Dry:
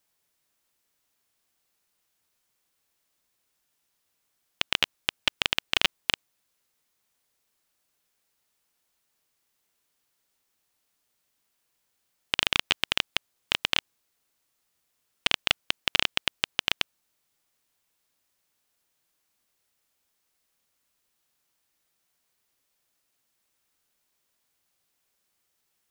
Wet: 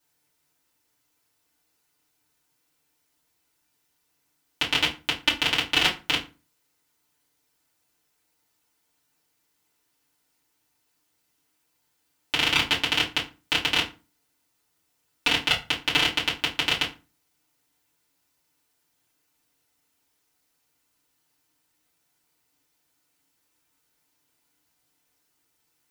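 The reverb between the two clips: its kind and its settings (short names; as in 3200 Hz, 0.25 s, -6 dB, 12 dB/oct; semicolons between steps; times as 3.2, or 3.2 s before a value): FDN reverb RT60 0.31 s, low-frequency decay 1.35×, high-frequency decay 0.75×, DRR -8 dB; gain -4.5 dB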